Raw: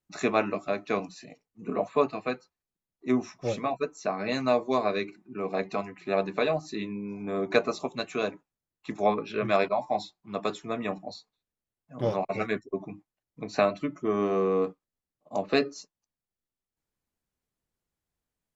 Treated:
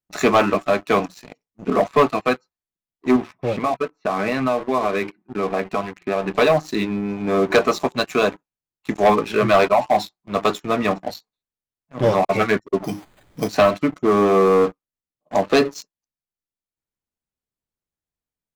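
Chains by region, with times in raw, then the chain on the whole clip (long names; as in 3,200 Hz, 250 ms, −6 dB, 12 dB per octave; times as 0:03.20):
0:03.16–0:06.35: low-pass filter 3,200 Hz 24 dB per octave + downward compressor 4 to 1, threshold −29 dBFS
0:12.84–0:13.49: converter with a step at zero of −39.5 dBFS + dynamic equaliser 620 Hz, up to +3 dB, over −51 dBFS, Q 1.4 + bad sample-rate conversion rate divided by 8×, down filtered, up hold
whole clip: dynamic equaliser 1,200 Hz, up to +4 dB, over −42 dBFS, Q 1.2; leveller curve on the samples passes 3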